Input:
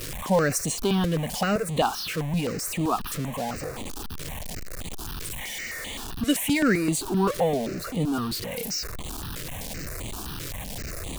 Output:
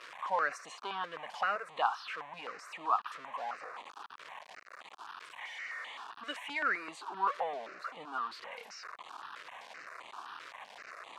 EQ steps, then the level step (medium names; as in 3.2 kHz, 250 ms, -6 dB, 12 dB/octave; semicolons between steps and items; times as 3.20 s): ladder band-pass 1.3 kHz, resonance 40%; +6.5 dB